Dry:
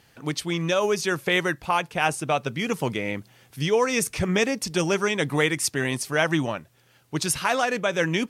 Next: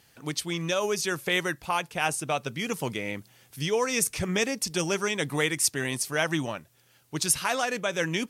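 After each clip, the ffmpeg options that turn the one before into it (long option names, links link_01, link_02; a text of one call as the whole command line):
ffmpeg -i in.wav -af "highshelf=frequency=4400:gain=8.5,volume=-5dB" out.wav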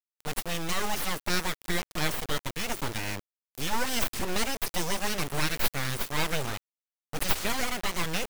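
ffmpeg -i in.wav -af "aeval=exprs='abs(val(0))':channel_layout=same,acrusher=bits=3:dc=4:mix=0:aa=0.000001" out.wav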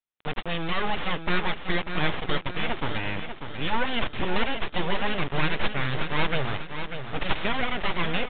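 ffmpeg -i in.wav -af "aecho=1:1:593|1186|1779|2372|2965:0.376|0.162|0.0695|0.0299|0.0128,aresample=8000,aresample=44100,volume=3.5dB" out.wav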